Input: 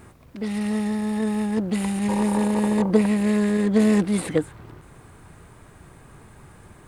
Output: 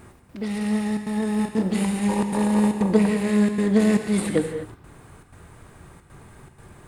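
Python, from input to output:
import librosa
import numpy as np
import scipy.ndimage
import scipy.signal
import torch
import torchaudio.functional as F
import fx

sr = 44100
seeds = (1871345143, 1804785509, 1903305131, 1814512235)

y = fx.step_gate(x, sr, bpm=155, pattern='xx.xxxxxxx.xx', floor_db=-60.0, edge_ms=4.5)
y = fx.doubler(y, sr, ms=32.0, db=-4.0, at=(1.36, 1.84))
y = fx.rev_gated(y, sr, seeds[0], gate_ms=270, shape='flat', drr_db=6.0)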